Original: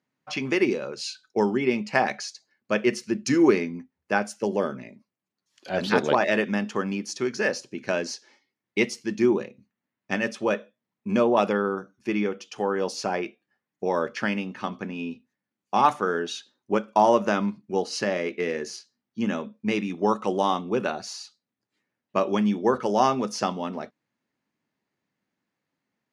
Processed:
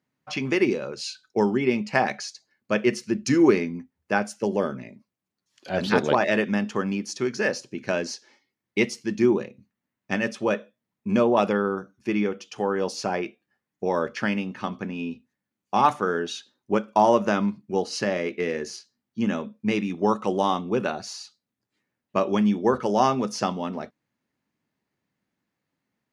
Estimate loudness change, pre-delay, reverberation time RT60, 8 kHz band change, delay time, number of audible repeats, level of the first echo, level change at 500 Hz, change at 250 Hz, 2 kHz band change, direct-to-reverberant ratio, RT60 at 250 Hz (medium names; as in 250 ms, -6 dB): +0.5 dB, no reverb, no reverb, 0.0 dB, no echo, no echo, no echo, +0.5 dB, +1.5 dB, 0.0 dB, no reverb, no reverb